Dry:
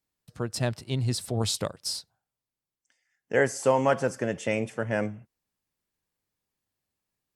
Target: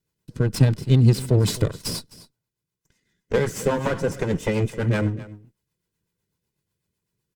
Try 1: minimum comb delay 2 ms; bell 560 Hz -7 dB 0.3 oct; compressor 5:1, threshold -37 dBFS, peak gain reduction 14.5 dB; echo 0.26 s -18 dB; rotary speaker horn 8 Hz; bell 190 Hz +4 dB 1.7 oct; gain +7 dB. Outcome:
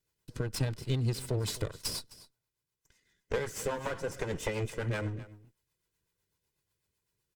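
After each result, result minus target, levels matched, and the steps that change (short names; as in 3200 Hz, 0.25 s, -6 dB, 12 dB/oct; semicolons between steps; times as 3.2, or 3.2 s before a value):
compressor: peak gain reduction +9 dB; 250 Hz band -2.5 dB
change: compressor 5:1, threshold -26 dBFS, peak gain reduction 5.5 dB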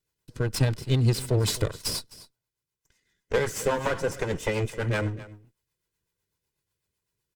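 250 Hz band -3.0 dB
change: second bell 190 Hz +14.5 dB 1.7 oct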